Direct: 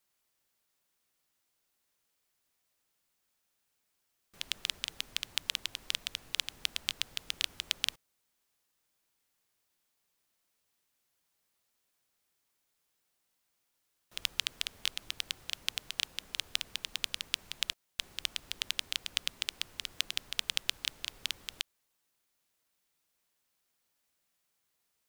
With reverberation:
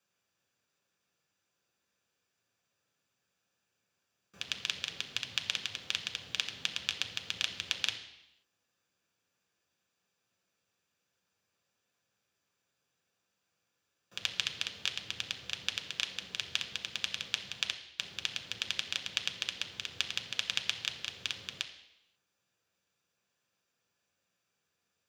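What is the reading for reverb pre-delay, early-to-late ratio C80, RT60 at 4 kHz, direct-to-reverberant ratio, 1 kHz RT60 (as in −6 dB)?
3 ms, 12.0 dB, 0.85 s, 3.5 dB, 0.85 s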